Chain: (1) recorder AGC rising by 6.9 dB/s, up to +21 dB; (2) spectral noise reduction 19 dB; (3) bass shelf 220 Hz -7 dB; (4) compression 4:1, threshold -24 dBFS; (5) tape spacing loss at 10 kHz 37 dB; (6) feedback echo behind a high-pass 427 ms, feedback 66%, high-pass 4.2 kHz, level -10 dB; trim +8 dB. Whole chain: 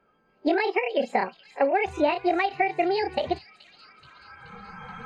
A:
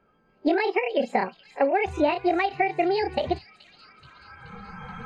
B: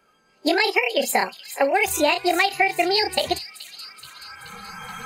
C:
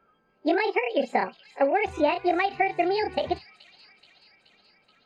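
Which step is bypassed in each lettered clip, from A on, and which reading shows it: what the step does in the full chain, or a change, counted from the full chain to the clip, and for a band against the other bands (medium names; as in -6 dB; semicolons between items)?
3, 125 Hz band +5.0 dB; 5, 4 kHz band +12.0 dB; 1, momentary loudness spread change -10 LU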